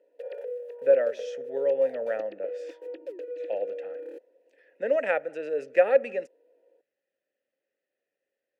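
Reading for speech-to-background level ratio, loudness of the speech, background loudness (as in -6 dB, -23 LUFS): 11.5 dB, -27.0 LUFS, -38.5 LUFS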